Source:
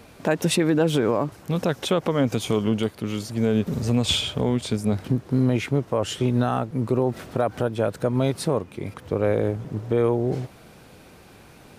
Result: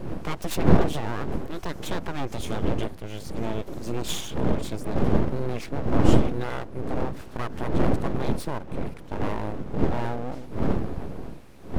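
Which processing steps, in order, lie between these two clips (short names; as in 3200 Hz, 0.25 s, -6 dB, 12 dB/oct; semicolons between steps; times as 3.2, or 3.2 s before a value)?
wind noise 200 Hz -18 dBFS; full-wave rectifier; gain -6 dB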